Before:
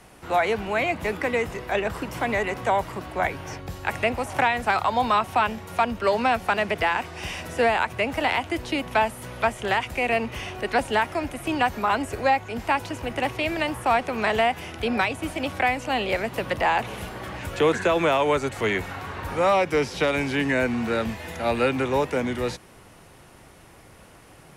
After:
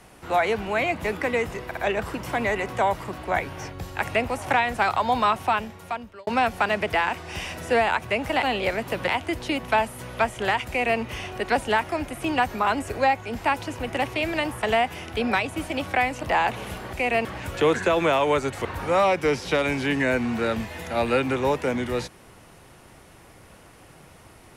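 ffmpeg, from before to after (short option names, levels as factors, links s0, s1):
-filter_complex "[0:a]asplit=11[s0][s1][s2][s3][s4][s5][s6][s7][s8][s9][s10];[s0]atrim=end=1.712[s11];[s1]atrim=start=1.648:end=1.712[s12];[s2]atrim=start=1.648:end=6.15,asetpts=PTS-STARTPTS,afade=t=out:st=3.632:d=0.87[s13];[s3]atrim=start=6.15:end=8.312,asetpts=PTS-STARTPTS,afade=t=in:d=0.004:c=hsin[s14];[s4]atrim=start=15.888:end=16.542[s15];[s5]atrim=start=8.308:end=13.862[s16];[s6]atrim=start=14.288:end=15.892[s17];[s7]atrim=start=16.538:end=17.242[s18];[s8]atrim=start=9.908:end=10.232[s19];[s9]atrim=start=17.238:end=18.642[s20];[s10]atrim=start=19.138[s21];[s11][s12]acrossfade=d=0.004:c1=hsin:c2=hsin[s22];[s13][s14]concat=n=2:v=0:a=1[s23];[s22][s23]acrossfade=d=0.004:c1=hsin:c2=hsin[s24];[s24][s15]acrossfade=d=0.004:c1=hsin:c2=hsin[s25];[s25][s16]acrossfade=d=0.004:c1=hsin:c2=hsin[s26];[s26][s17]acrossfade=d=0.004:c1=hsin:c2=hsin[s27];[s27][s18]acrossfade=d=0.004:c1=hsin:c2=hsin[s28];[s28][s19]acrossfade=d=0.004:c1=hsin:c2=hsin[s29];[s29][s20]acrossfade=d=0.004:c1=hsin:c2=hsin[s30];[s30][s21]acrossfade=d=0.004:c1=hsin:c2=hsin"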